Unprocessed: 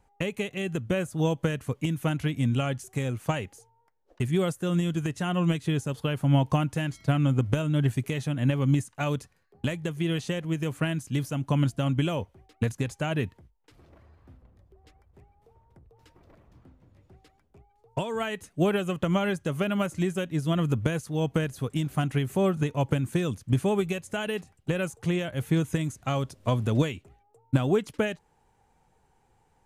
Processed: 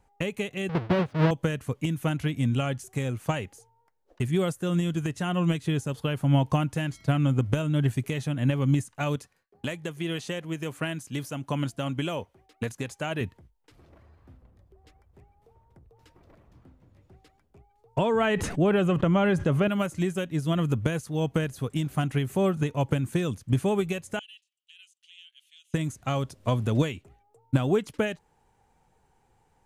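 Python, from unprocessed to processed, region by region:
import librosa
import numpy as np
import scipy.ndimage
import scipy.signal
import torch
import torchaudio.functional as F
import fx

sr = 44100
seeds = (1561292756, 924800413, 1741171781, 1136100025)

y = fx.chain(x, sr, fx.halfwave_hold(),
    fx.highpass(hz=94.0, slope=12),
    fx.air_absorb(metres=330.0), at=(0.69, 1.31))
y = fx.chain(y, sr, fx.gate_hold(open_db=-55.0, close_db=-61.0, hold_ms=71.0, range_db=-21, attack_ms=1.4, release_ms=100.0),
    fx.low_shelf(hz=180.0, db=-10.5), at=(9.16, 13.21))
y = fx.chain(y, sr, fx.lowpass(hz=1900.0, slope=6),
    fx.env_flatten(amount_pct=70), at=(17.98, 19.68))
y = fx.chain(y, sr, fx.ladder_bandpass(hz=3200.0, resonance_pct=75),
    fx.differentiator(), at=(24.19, 25.74))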